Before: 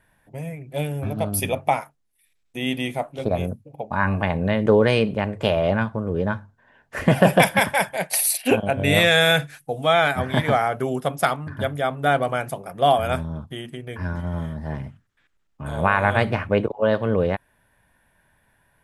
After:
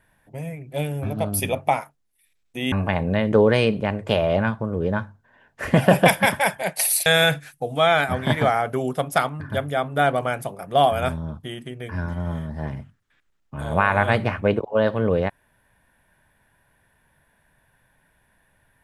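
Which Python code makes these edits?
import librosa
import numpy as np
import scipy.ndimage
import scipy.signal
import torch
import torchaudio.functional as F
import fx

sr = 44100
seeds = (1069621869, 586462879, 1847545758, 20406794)

y = fx.edit(x, sr, fx.cut(start_s=2.72, length_s=1.34),
    fx.cut(start_s=8.4, length_s=0.73), tone=tone)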